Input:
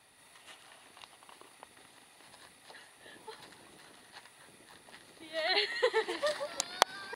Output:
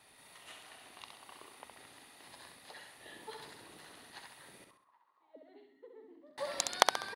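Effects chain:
0:04.64–0:06.38: envelope filter 270–1,400 Hz, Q 15, down, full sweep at −36.5 dBFS
repeating echo 66 ms, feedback 39%, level −5 dB

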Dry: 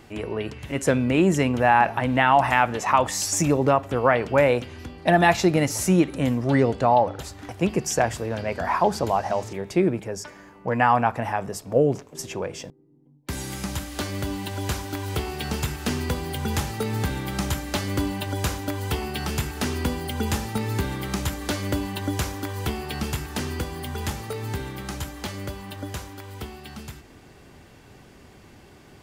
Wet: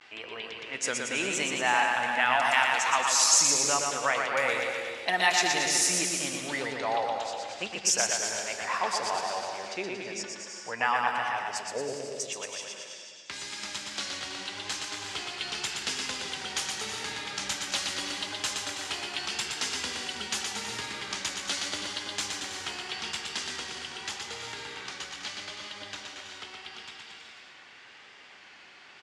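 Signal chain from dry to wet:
pitch vibrato 0.83 Hz 92 cents
meter weighting curve ITU-R 468
low-pass that shuts in the quiet parts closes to 2,300 Hz, open at −16.5 dBFS
on a send: bouncing-ball delay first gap 120 ms, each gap 0.9×, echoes 5
on the sum: reverb whose tail is shaped and stops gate 410 ms rising, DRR 8 dB
one half of a high-frequency compander encoder only
level −8.5 dB

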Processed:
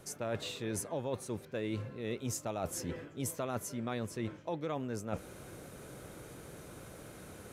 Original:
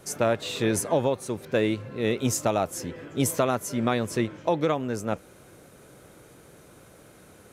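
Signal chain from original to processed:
low-shelf EQ 140 Hz +4 dB
reversed playback
downward compressor 6 to 1, threshold −36 dBFS, peak gain reduction 17 dB
reversed playback
level +1 dB

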